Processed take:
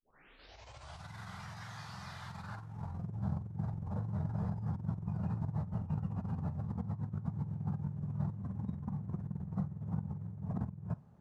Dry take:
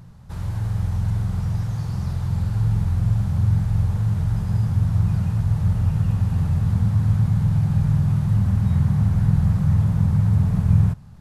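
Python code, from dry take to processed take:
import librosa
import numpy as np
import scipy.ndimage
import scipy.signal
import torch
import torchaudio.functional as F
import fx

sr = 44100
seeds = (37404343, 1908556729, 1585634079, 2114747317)

y = fx.tape_start_head(x, sr, length_s=1.14)
y = fx.over_compress(y, sr, threshold_db=-22.0, ratio=-0.5)
y = fx.noise_reduce_blind(y, sr, reduce_db=7)
y = fx.filter_sweep_bandpass(y, sr, from_hz=2200.0, to_hz=470.0, start_s=2.25, end_s=3.1, q=0.97)
y = y * 10.0 ** (-2.5 / 20.0)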